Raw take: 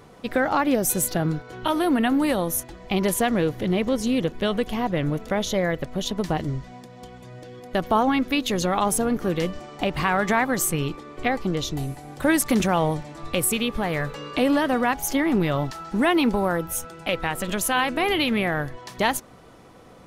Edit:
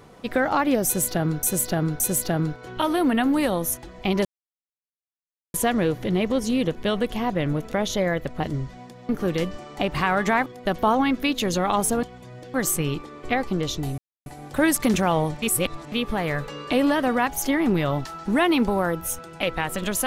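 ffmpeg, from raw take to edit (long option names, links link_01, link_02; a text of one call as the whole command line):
ffmpeg -i in.wav -filter_complex "[0:a]asplit=12[link_01][link_02][link_03][link_04][link_05][link_06][link_07][link_08][link_09][link_10][link_11][link_12];[link_01]atrim=end=1.432[link_13];[link_02]atrim=start=0.858:end=1.432[link_14];[link_03]atrim=start=0.858:end=3.11,asetpts=PTS-STARTPTS,afade=type=out:start_time=2.248:duration=0.004:curve=hsin,apad=pad_dur=1.29[link_15];[link_04]atrim=start=3.11:end=5.972,asetpts=PTS-STARTPTS,afade=type=in:duration=0.004:curve=hsin[link_16];[link_05]atrim=start=6.338:end=7.032[link_17];[link_06]atrim=start=9.108:end=10.482[link_18];[link_07]atrim=start=7.538:end=9.112[link_19];[link_08]atrim=start=7.028:end=7.542[link_20];[link_09]atrim=start=10.478:end=11.92,asetpts=PTS-STARTPTS,afade=type=out:start_time=1.438:duration=0.004:curve=hsin,apad=pad_dur=0.28[link_21];[link_10]atrim=start=11.92:end=13.082,asetpts=PTS-STARTPTS,afade=type=in:duration=0.004:curve=hsin[link_22];[link_11]atrim=start=13.078:end=13.582,asetpts=PTS-STARTPTS,areverse[link_23];[link_12]atrim=start=13.578[link_24];[link_13][link_14]acrossfade=duration=0.004:curve1=hsin:curve2=hsin[link_25];[link_15][link_16]concat=n=2:v=0:a=1[link_26];[link_25][link_26]acrossfade=duration=0.004:curve1=hsin:curve2=hsin[link_27];[link_27][link_17]acrossfade=duration=0.004:curve1=hsin:curve2=hsin[link_28];[link_28][link_18]acrossfade=duration=0.004:curve1=hsin:curve2=hsin[link_29];[link_29][link_19]acrossfade=duration=0.004:curve1=hsin:curve2=hsin[link_30];[link_30][link_20]acrossfade=duration=0.004:curve1=hsin:curve2=hsin[link_31];[link_21][link_22]concat=n=2:v=0:a=1[link_32];[link_31][link_32]acrossfade=duration=0.004:curve1=hsin:curve2=hsin[link_33];[link_33][link_23]acrossfade=duration=0.004:curve1=hsin:curve2=hsin[link_34];[link_34][link_24]acrossfade=duration=0.004:curve1=hsin:curve2=hsin" out.wav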